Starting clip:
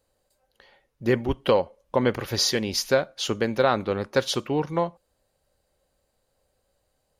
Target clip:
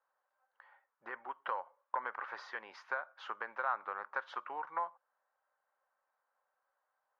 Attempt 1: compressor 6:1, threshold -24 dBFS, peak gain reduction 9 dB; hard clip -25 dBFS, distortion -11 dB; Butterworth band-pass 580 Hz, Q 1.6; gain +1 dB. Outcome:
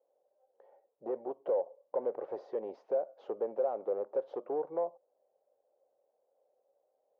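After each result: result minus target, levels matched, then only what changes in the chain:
500 Hz band +11.5 dB; hard clip: distortion +13 dB
change: Butterworth band-pass 1200 Hz, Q 1.6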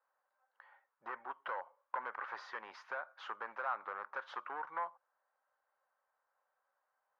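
hard clip: distortion +13 dB
change: hard clip -18.5 dBFS, distortion -24 dB

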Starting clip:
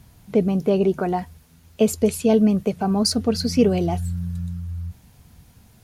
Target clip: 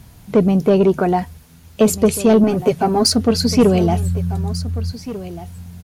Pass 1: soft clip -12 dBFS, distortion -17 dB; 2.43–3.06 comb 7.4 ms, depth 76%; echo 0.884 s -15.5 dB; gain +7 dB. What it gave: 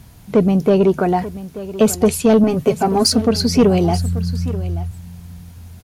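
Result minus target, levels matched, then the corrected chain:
echo 0.609 s early
soft clip -12 dBFS, distortion -17 dB; 2.43–3.06 comb 7.4 ms, depth 76%; echo 1.493 s -15.5 dB; gain +7 dB

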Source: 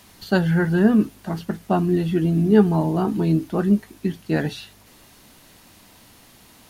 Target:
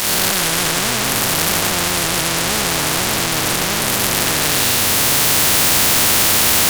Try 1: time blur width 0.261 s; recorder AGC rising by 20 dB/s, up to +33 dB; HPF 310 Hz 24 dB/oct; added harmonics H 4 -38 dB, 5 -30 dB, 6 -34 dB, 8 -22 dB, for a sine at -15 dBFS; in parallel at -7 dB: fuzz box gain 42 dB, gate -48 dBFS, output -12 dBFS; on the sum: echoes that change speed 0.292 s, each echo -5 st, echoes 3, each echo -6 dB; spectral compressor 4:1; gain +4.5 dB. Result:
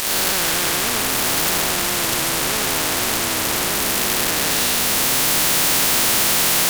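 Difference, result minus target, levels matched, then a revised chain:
125 Hz band -4.5 dB
time blur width 0.261 s; recorder AGC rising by 20 dB/s, up to +33 dB; HPF 84 Hz 24 dB/oct; added harmonics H 4 -38 dB, 5 -30 dB, 6 -34 dB, 8 -22 dB, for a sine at -15 dBFS; in parallel at -7 dB: fuzz box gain 42 dB, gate -48 dBFS, output -12 dBFS; on the sum: echoes that change speed 0.292 s, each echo -5 st, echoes 3, each echo -6 dB; spectral compressor 4:1; gain +4.5 dB

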